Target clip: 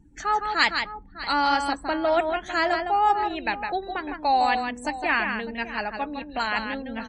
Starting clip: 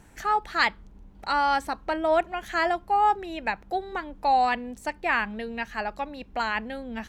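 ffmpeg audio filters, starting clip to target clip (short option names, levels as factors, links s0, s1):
-filter_complex "[0:a]equalizer=f=290:w=6.7:g=8,asplit=2[s0][s1];[s1]aecho=0:1:159|602:0.501|0.178[s2];[s0][s2]amix=inputs=2:normalize=0,afftdn=nr=27:nf=-48,highshelf=f=3700:g=9.5" -ar 32000 -c:a libmp3lame -b:a 40k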